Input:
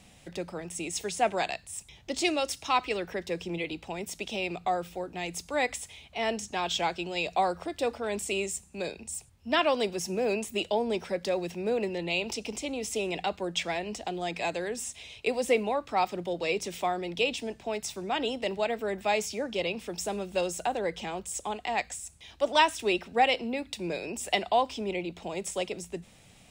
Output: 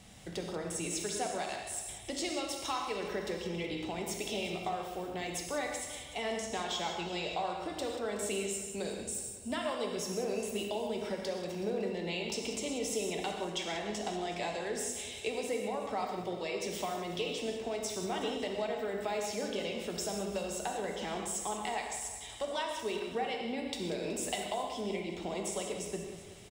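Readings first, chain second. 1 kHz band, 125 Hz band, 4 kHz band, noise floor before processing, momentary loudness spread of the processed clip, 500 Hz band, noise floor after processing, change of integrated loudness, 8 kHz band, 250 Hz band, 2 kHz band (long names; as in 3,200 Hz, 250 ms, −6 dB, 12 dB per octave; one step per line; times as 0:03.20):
−8.0 dB, −2.5 dB, −5.0 dB, −56 dBFS, 3 LU, −5.0 dB, −45 dBFS, −5.5 dB, −1.0 dB, −3.5 dB, −8.0 dB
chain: notch filter 2,500 Hz, Q 10
downward compressor, threshold −35 dBFS, peak gain reduction 16.5 dB
on a send: repeating echo 186 ms, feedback 53%, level −11 dB
on the sum: reverb whose tail is shaped and stops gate 180 ms flat, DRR 1.5 dB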